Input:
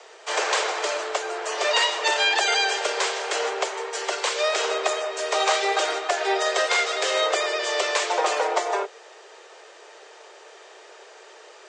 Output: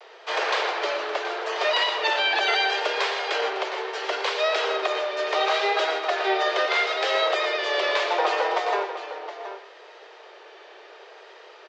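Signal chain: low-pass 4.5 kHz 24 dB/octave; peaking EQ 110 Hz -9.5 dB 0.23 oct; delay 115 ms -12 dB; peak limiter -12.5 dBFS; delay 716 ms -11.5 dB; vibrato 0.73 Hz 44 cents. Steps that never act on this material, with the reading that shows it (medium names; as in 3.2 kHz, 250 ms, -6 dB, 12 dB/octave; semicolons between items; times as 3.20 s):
peaking EQ 110 Hz: input has nothing below 290 Hz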